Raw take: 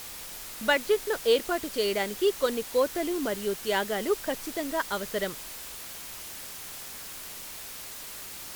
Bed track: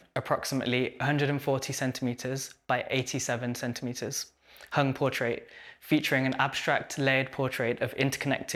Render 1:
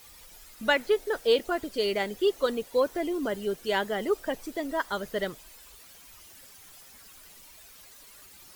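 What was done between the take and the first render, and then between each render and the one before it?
noise reduction 13 dB, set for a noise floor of -41 dBFS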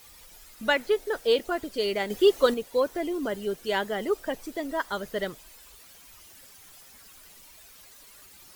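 2.10–2.54 s: gain +5.5 dB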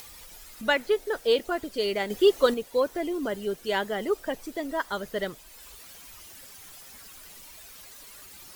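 upward compressor, threshold -40 dBFS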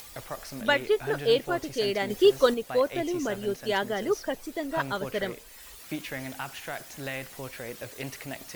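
add bed track -10 dB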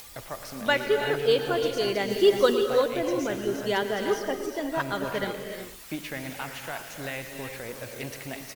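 delay 115 ms -14 dB; gated-style reverb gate 390 ms rising, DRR 5 dB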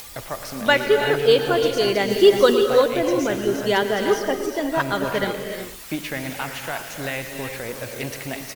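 trim +6.5 dB; peak limiter -3 dBFS, peak gain reduction 1.5 dB

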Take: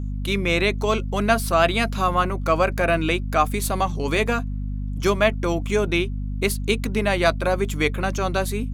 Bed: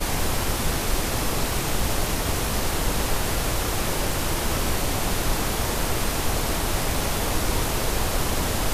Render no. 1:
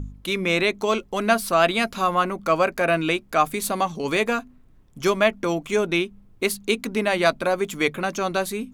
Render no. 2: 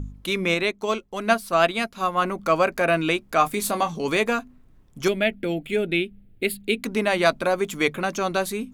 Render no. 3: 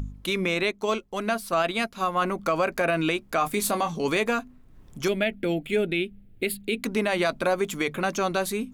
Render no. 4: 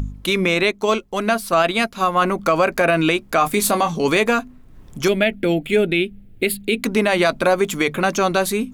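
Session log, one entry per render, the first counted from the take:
de-hum 50 Hz, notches 5
0.54–2.22 s: upward expansion, over -37 dBFS; 3.37–4.08 s: doubling 24 ms -9 dB; 5.08–6.84 s: static phaser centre 2.6 kHz, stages 4
upward compressor, threshold -38 dBFS; peak limiter -14.5 dBFS, peak gain reduction 9 dB
trim +7.5 dB

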